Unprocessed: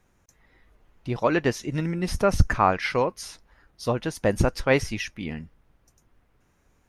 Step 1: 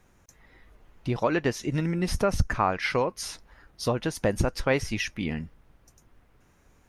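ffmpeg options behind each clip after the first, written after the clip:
-af "acompressor=threshold=-30dB:ratio=2,volume=4dB"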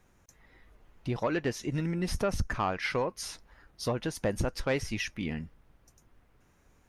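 -af "asoftclip=type=tanh:threshold=-15.5dB,volume=-3.5dB"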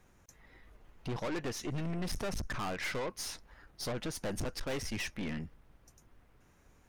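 -af "aeval=exprs='(tanh(63.1*val(0)+0.5)-tanh(0.5))/63.1':c=same,volume=2.5dB"

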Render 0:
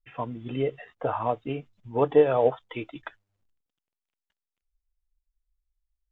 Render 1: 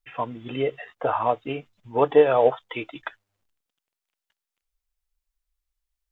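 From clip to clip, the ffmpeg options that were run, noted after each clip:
-af "lowshelf=f=350:g=-10,volume=6.5dB"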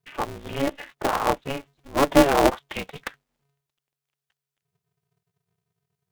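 -af "aeval=exprs='val(0)*sgn(sin(2*PI*140*n/s))':c=same"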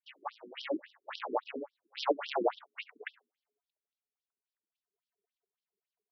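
-filter_complex "[0:a]acrossover=split=1400[a][b];[a]adelay=70[c];[c][b]amix=inputs=2:normalize=0,afftfilt=real='re*between(b*sr/1024,290*pow(4200/290,0.5+0.5*sin(2*PI*3.6*pts/sr))/1.41,290*pow(4200/290,0.5+0.5*sin(2*PI*3.6*pts/sr))*1.41)':imag='im*between(b*sr/1024,290*pow(4200/290,0.5+0.5*sin(2*PI*3.6*pts/sr))/1.41,290*pow(4200/290,0.5+0.5*sin(2*PI*3.6*pts/sr))*1.41)':win_size=1024:overlap=0.75,volume=-3.5dB"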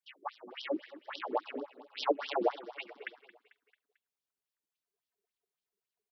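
-af "aecho=1:1:222|444|666|888:0.141|0.072|0.0367|0.0187"

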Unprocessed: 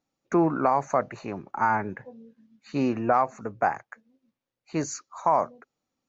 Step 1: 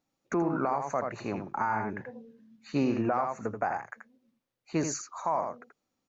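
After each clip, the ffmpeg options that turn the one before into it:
-filter_complex "[0:a]asplit=2[a][b];[b]aecho=0:1:82:0.447[c];[a][c]amix=inputs=2:normalize=0,alimiter=limit=-18.5dB:level=0:latency=1:release=218"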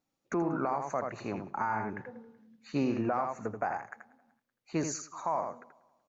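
-af "aecho=1:1:189|378|567:0.0631|0.0259|0.0106,volume=-2.5dB"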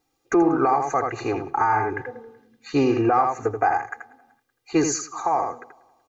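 -af "aecho=1:1:2.5:0.98,volume=8.5dB"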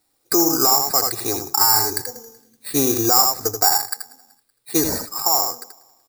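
-af "acrusher=samples=7:mix=1:aa=0.000001,aexciter=amount=5.1:drive=5.8:freq=4.1k,volume=-1dB"

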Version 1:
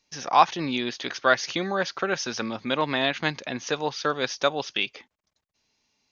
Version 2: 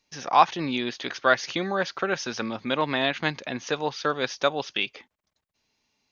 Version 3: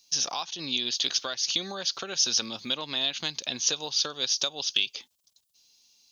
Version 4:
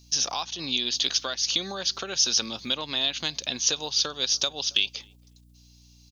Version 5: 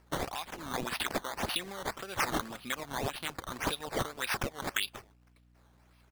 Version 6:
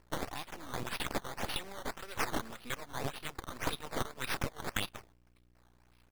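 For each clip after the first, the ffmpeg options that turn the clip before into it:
-af "equalizer=f=5.8k:w=1.4:g=-3.5"
-af "acompressor=threshold=-28dB:ratio=5,aexciter=amount=10.5:drive=4.1:freq=3k,volume=-5.5dB"
-filter_complex "[0:a]aeval=exprs='val(0)+0.00158*(sin(2*PI*60*n/s)+sin(2*PI*2*60*n/s)/2+sin(2*PI*3*60*n/s)/3+sin(2*PI*4*60*n/s)/4+sin(2*PI*5*60*n/s)/5)':c=same,asplit=2[a][b];[b]adelay=274,lowpass=f=880:p=1,volume=-23.5dB,asplit=2[c][d];[d]adelay=274,lowpass=f=880:p=1,volume=0.3[e];[a][c][e]amix=inputs=3:normalize=0,volume=2dB"
-af "acrusher=samples=12:mix=1:aa=0.000001:lfo=1:lforange=12:lforate=1.8,volume=-8dB"
-af "aeval=exprs='max(val(0),0)':c=same,volume=1dB"

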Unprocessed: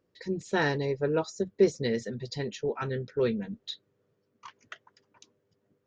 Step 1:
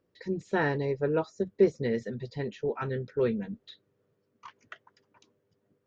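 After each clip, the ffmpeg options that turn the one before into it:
-filter_complex "[0:a]acrossover=split=2800[a][b];[b]acompressor=threshold=-52dB:ratio=4:attack=1:release=60[c];[a][c]amix=inputs=2:normalize=0,highshelf=f=5.2k:g=-6"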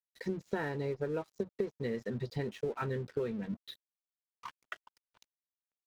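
-af "acompressor=threshold=-34dB:ratio=20,aeval=exprs='sgn(val(0))*max(abs(val(0))-0.00133,0)':c=same,volume=3.5dB"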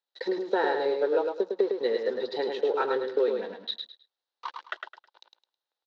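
-af "highpass=f=340:w=0.5412,highpass=f=340:w=1.3066,equalizer=f=360:t=q:w=4:g=4,equalizer=f=530:t=q:w=4:g=7,equalizer=f=840:t=q:w=4:g=8,equalizer=f=1.5k:t=q:w=4:g=3,equalizer=f=2.3k:t=q:w=4:g=-5,equalizer=f=3.9k:t=q:w=4:g=10,lowpass=f=5.1k:w=0.5412,lowpass=f=5.1k:w=1.3066,aecho=1:1:106|212|318:0.562|0.141|0.0351,volume=6dB"

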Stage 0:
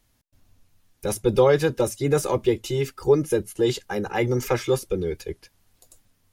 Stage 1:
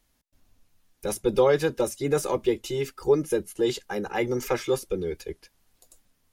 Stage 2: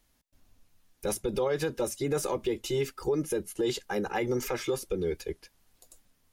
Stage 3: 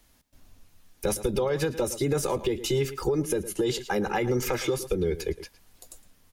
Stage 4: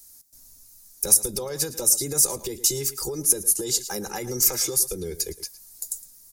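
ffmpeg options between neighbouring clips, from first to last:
-af "equalizer=f=110:w=2.1:g=-9.5,volume=-2.5dB"
-af "alimiter=limit=-20dB:level=0:latency=1:release=86"
-filter_complex "[0:a]asplit=2[a][b];[b]adelay=110.8,volume=-16dB,highshelf=f=4k:g=-2.49[c];[a][c]amix=inputs=2:normalize=0,acrossover=split=150[d][e];[e]acompressor=threshold=-34dB:ratio=2.5[f];[d][f]amix=inputs=2:normalize=0,volume=8dB"
-af "aexciter=amount=8.2:drive=7.9:freq=4.6k,volume=-6dB"

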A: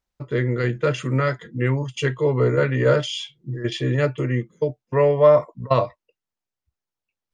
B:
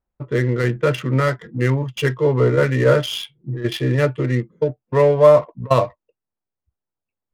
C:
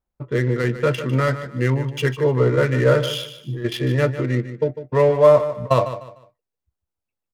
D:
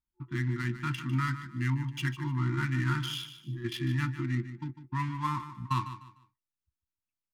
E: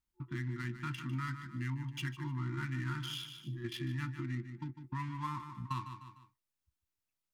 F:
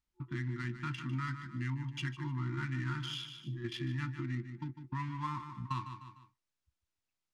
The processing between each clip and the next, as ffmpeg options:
-af "adynamicsmooth=sensitivity=6.5:basefreq=1.4k,volume=3dB"
-af "aecho=1:1:150|300|450:0.251|0.0728|0.0211,volume=-1.5dB"
-af "afftfilt=real='re*(1-between(b*sr/4096,360,870))':imag='im*(1-between(b*sr/4096,360,870))':win_size=4096:overlap=0.75,volume=-9dB"
-af "acompressor=threshold=-45dB:ratio=2,volume=2dB"
-af "lowpass=7.2k,volume=1dB"

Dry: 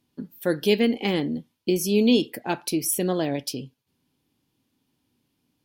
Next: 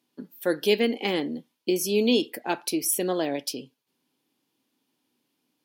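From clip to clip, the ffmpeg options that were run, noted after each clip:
-af "highpass=280"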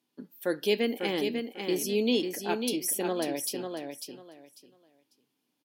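-af "aecho=1:1:546|1092|1638:0.501|0.105|0.0221,volume=-4.5dB"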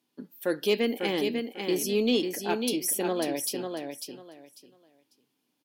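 -af "asoftclip=type=tanh:threshold=-14.5dB,volume=2dB"

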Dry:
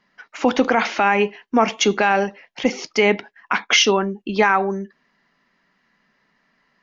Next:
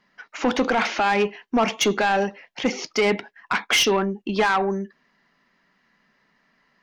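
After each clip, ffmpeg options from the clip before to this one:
-af "asoftclip=type=tanh:threshold=-13.5dB"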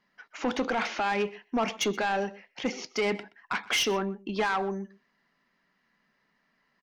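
-af "aecho=1:1:124:0.0944,volume=-7.5dB"

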